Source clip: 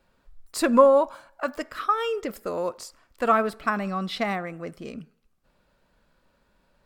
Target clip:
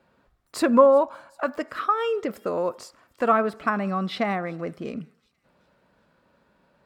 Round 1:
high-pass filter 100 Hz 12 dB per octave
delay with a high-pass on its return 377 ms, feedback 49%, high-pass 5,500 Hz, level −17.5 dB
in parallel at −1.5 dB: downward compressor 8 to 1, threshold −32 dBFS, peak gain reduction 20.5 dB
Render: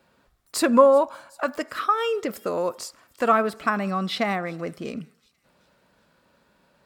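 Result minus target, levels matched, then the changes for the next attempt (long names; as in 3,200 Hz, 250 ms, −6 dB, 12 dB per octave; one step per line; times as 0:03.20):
8,000 Hz band +7.5 dB
add after high-pass filter: high-shelf EQ 3,500 Hz −11 dB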